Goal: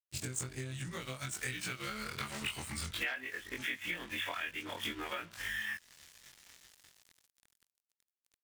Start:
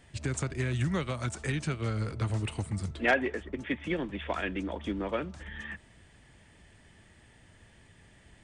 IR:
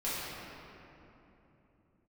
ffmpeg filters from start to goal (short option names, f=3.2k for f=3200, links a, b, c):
-filter_complex "[0:a]afftfilt=real='re':imag='-im':win_size=2048:overlap=0.75,acrossover=split=220|1100|4000[a][b][c][d];[c]dynaudnorm=f=200:g=17:m=14.5dB[e];[a][b][e][d]amix=inputs=4:normalize=0,aeval=exprs='sgn(val(0))*max(abs(val(0))-0.00251,0)':c=same,acompressor=threshold=-41dB:ratio=12,crystalizer=i=3.5:c=0,volume=2.5dB"